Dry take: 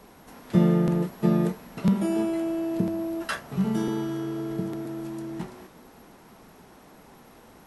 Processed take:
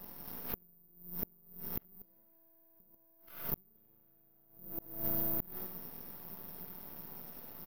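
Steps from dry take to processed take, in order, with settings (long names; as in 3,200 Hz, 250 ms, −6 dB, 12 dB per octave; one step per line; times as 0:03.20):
hearing-aid frequency compression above 1,200 Hz 1.5 to 1
parametric band 170 Hz +9 dB 0.54 octaves
downward compressor 6 to 1, threshold −26 dBFS, peak gain reduction 17.5 dB
half-wave rectification
repeating echo 74 ms, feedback 27%, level −7.5 dB
bad sample-rate conversion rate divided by 3×, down filtered, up zero stuff
gate with flip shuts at −15 dBFS, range −37 dB
background raised ahead of every attack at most 100 dB per second
level −3 dB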